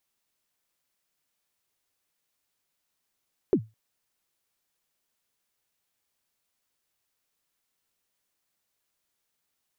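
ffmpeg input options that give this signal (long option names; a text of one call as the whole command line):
ffmpeg -f lavfi -i "aevalsrc='0.211*pow(10,-3*t/0.23)*sin(2*PI*(440*0.071/log(110/440)*(exp(log(110/440)*min(t,0.071)/0.071)-1)+110*max(t-0.071,0)))':duration=0.21:sample_rate=44100" out.wav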